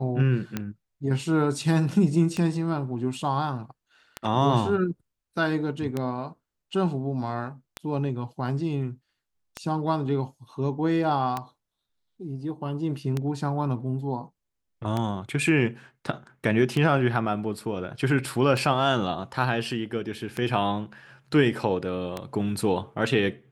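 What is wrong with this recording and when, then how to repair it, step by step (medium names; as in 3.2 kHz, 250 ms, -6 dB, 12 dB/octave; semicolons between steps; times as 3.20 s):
tick 33 1/3 rpm -14 dBFS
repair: de-click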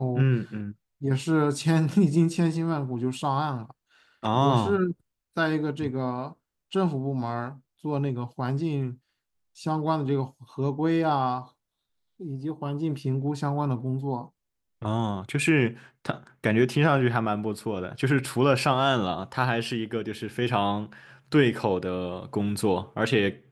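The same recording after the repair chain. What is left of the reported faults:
nothing left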